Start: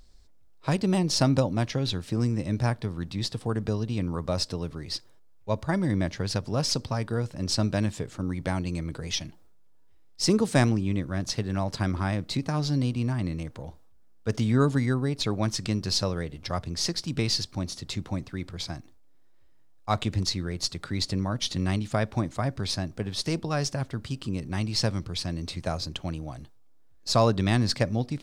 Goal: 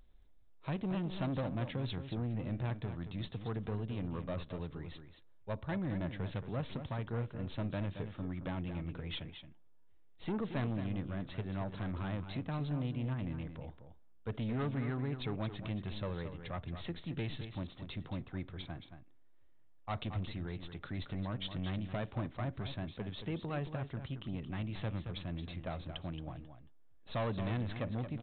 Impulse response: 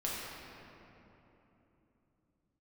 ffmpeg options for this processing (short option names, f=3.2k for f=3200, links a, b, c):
-af "aresample=8000,asoftclip=type=tanh:threshold=-24dB,aresample=44100,aecho=1:1:224:0.335,volume=-7.5dB"